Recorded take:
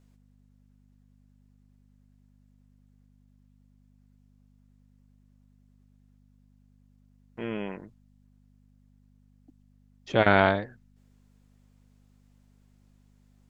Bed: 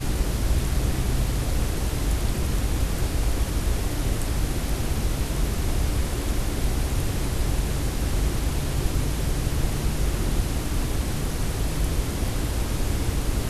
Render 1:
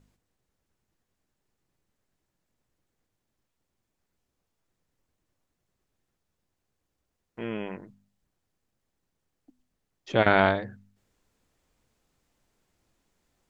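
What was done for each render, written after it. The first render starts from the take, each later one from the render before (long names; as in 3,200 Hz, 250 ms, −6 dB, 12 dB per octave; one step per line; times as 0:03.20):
hum removal 50 Hz, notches 5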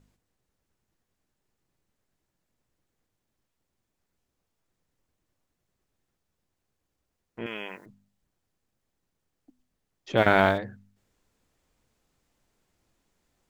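0:07.46–0:07.86: spectral tilt +4.5 dB per octave
0:10.17–0:10.58: mu-law and A-law mismatch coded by mu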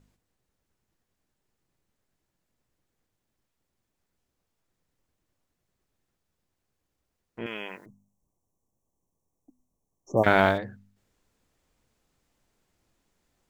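0:07.86–0:10.24: linear-phase brick-wall band-stop 1,200–5,400 Hz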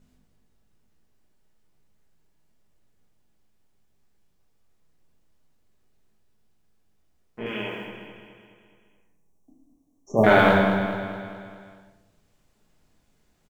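repeating echo 211 ms, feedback 54%, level −9 dB
rectangular room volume 290 cubic metres, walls mixed, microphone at 1.4 metres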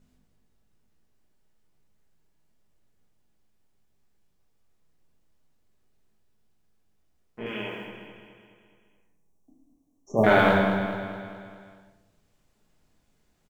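level −2.5 dB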